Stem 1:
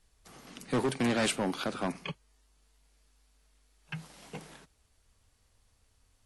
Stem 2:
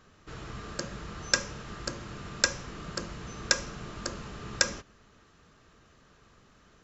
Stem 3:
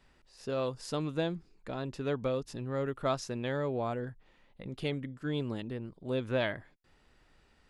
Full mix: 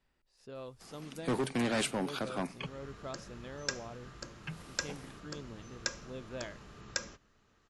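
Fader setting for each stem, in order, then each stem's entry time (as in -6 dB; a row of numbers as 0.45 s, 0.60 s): -3.0 dB, -10.5 dB, -12.5 dB; 0.55 s, 2.35 s, 0.00 s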